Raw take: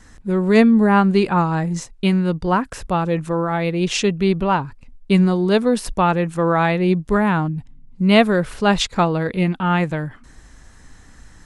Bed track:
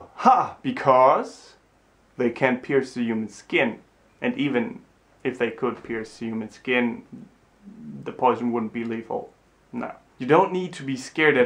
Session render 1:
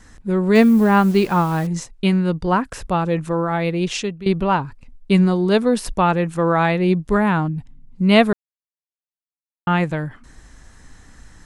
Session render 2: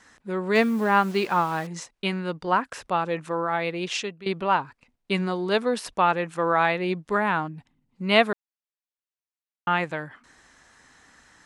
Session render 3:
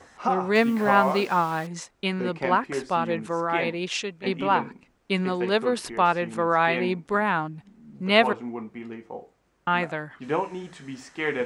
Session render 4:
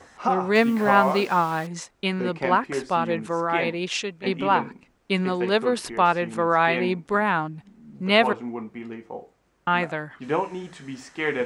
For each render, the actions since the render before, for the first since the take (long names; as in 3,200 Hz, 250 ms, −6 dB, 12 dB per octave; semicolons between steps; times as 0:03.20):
0:00.55–0:01.67: hold until the input has moved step −34 dBFS; 0:03.74–0:04.26: fade out, to −15.5 dB; 0:08.33–0:09.67: silence
high-pass filter 810 Hz 6 dB per octave; high-shelf EQ 6,600 Hz −10.5 dB
mix in bed track −9 dB
level +1.5 dB; brickwall limiter −3 dBFS, peak gain reduction 2 dB